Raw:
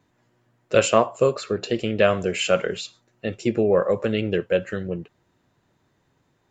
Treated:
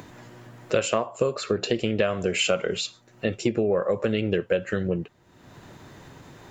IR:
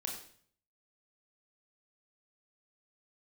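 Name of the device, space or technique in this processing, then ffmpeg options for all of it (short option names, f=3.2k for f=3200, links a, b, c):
upward and downward compression: -filter_complex "[0:a]asettb=1/sr,asplit=3[a][b][c];[a]atrim=end=2.374[d];[b]atrim=start=2.37:end=2.84,asetpts=PTS-STARTPTS,afade=t=in:d=0.004:c=qsin,afade=t=out:st=0.466:d=0.004:c=qsin,bandreject=f=1.7k:w=7.2[e];[c]atrim=start=2.836[f];[d][e]acrossfade=d=0.004:c1=hsin:c2=qsin[g];[g][f]acrossfade=d=0.004:c1=qsin:c2=hsin,acompressor=mode=upward:threshold=-36dB:ratio=2.5,acompressor=threshold=-24dB:ratio=8,volume=4.5dB"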